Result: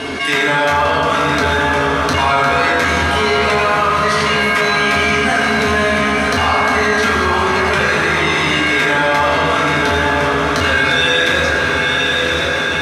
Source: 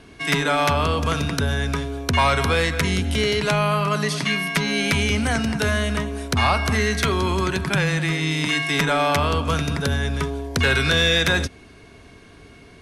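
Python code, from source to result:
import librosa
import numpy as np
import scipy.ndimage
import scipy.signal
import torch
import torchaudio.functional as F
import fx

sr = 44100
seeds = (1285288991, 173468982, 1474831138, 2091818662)

p1 = fx.highpass(x, sr, hz=540.0, slope=6)
p2 = fx.high_shelf(p1, sr, hz=8100.0, db=-11.5)
p3 = 10.0 ** (-12.5 / 20.0) * np.tanh(p2 / 10.0 ** (-12.5 / 20.0))
p4 = p3 + fx.echo_diffused(p3, sr, ms=972, feedback_pct=48, wet_db=-6.0, dry=0)
p5 = fx.rev_fdn(p4, sr, rt60_s=2.4, lf_ratio=1.0, hf_ratio=0.4, size_ms=68.0, drr_db=-8.0)
p6 = fx.env_flatten(p5, sr, amount_pct=70)
y = F.gain(torch.from_numpy(p6), -2.5).numpy()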